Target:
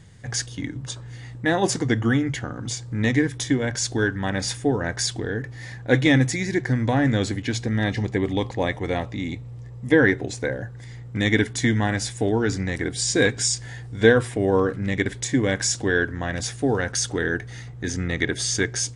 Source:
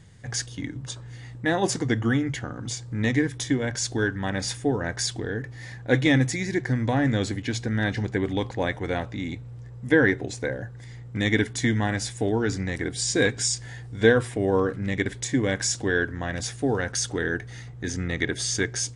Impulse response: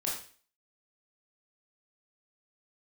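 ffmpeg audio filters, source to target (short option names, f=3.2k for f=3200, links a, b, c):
-filter_complex "[0:a]asettb=1/sr,asplit=3[a][b][c];[a]atrim=end=7.644[d];[b]atrim=start=7.64:end=9.99,asetpts=PTS-STARTPTS,afade=t=in:d=0.004:c=qsin,afade=t=out:st=2.346:d=0.004:c=qsin,bandreject=f=1.5k:w=5.9[e];[c]atrim=start=9.986[f];[d][e]acrossfade=d=0.004:c1=hsin:c2=qsin[g];[g][f]acrossfade=d=0.004:c1=qsin:c2=hsin,volume=2.5dB"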